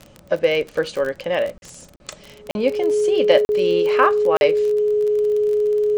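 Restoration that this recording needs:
click removal
notch filter 420 Hz, Q 30
repair the gap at 0:01.58/0:01.96/0:02.51/0:03.45/0:04.37, 41 ms

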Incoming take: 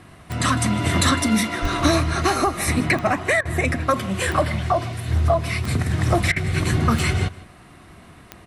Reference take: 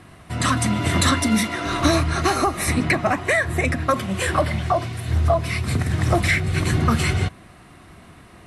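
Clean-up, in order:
click removal
0:01.61–0:01.73: high-pass filter 140 Hz 24 dB per octave
repair the gap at 0:03.41/0:06.32, 41 ms
echo removal 156 ms −20 dB

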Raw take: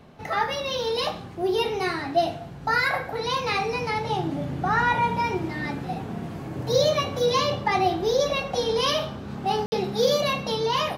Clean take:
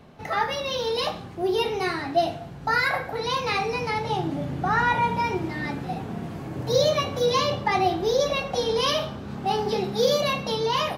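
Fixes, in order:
ambience match 0:09.66–0:09.72

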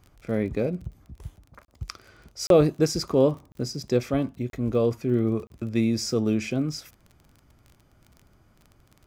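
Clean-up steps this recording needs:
click removal
repair the gap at 0:01.65/0:02.47/0:03.52/0:04.50/0:05.47, 32 ms

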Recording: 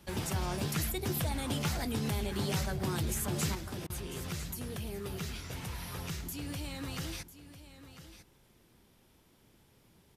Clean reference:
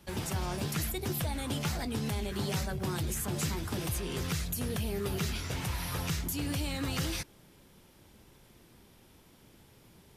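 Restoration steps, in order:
repair the gap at 0:03.87, 28 ms
echo removal 998 ms −13.5 dB
level 0 dB, from 0:03.55 +6 dB

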